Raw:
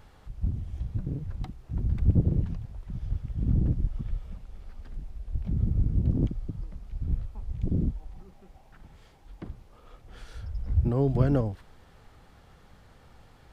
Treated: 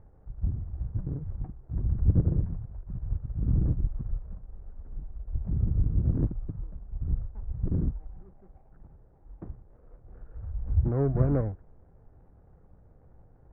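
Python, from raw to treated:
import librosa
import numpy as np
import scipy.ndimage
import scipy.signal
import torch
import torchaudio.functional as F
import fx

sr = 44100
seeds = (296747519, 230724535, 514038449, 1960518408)

y = scipy.signal.medfilt(x, 41)
y = scipy.signal.sosfilt(scipy.signal.butter(4, 1500.0, 'lowpass', fs=sr, output='sos'), y)
y = fx.peak_eq(y, sr, hz=230.0, db=-4.0, octaves=0.67)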